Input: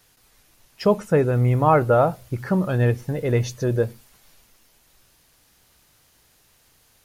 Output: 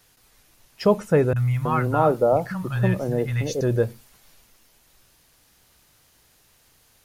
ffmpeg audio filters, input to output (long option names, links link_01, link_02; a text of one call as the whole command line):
ffmpeg -i in.wav -filter_complex "[0:a]asettb=1/sr,asplit=3[link_01][link_02][link_03];[link_01]atrim=end=1.334[link_04];[link_02]atrim=start=1.33:end=3.61,asetpts=PTS-STARTPTS,afade=type=in:duration=0.004:curve=qsin,afade=type=out:start_time=2.276:duration=0.004:curve=qsin,acrossover=split=160|1000[link_05][link_06][link_07];[link_07]adelay=30[link_08];[link_06]adelay=320[link_09];[link_05][link_09][link_08]amix=inputs=3:normalize=0,atrim=end_sample=100548[link_10];[link_03]atrim=start=3.606[link_11];[link_04][link_10]acrossfade=duration=0.004:curve1=hsin:curve2=qsin[link_12];[link_12][link_11]acrossfade=duration=0.004:curve1=qsin:curve2=hsin" out.wav